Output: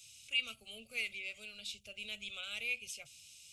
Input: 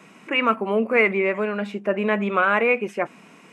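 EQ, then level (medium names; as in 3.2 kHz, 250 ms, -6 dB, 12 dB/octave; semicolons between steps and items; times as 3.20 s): inverse Chebyshev band-stop 170–1900 Hz, stop band 40 dB; +6.0 dB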